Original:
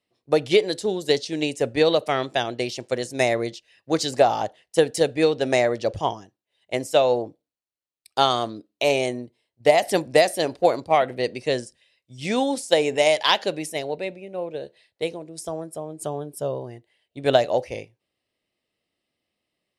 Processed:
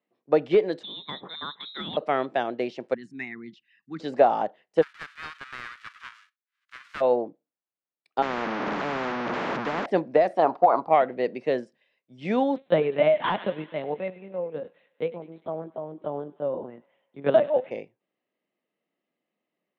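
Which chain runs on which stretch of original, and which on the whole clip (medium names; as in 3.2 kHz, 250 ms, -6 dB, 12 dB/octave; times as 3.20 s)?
0.83–1.97 s: peaking EQ 90 Hz +14.5 dB 1.6 oct + frequency inversion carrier 3.9 kHz
2.94–4.00 s: resonances exaggerated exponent 1.5 + Chebyshev band-stop 210–1500 Hz + dynamic bell 4.9 kHz, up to -5 dB, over -48 dBFS, Q 1.1
4.81–7.00 s: formants flattened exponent 0.1 + steep high-pass 1.2 kHz 48 dB/octave
8.22–9.86 s: one-bit delta coder 32 kbps, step -21.5 dBFS + high-pass 260 Hz + spectrum-flattening compressor 10:1
10.37–10.89 s: high-order bell 960 Hz +15.5 dB 1.2 oct + compression 12:1, threshold -11 dBFS
12.56–17.71 s: LPC vocoder at 8 kHz pitch kept + feedback echo behind a high-pass 100 ms, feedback 62%, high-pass 1.4 kHz, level -16.5 dB
whole clip: Chebyshev high-pass 180 Hz, order 3; de-esser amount 65%; low-pass 1.8 kHz 12 dB/octave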